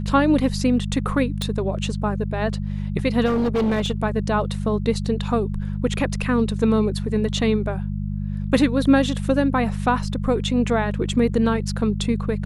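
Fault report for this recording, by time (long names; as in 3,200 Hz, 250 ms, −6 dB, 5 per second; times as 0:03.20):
mains hum 50 Hz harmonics 4 −26 dBFS
0:01.42: click −11 dBFS
0:03.25–0:03.92: clipping −17 dBFS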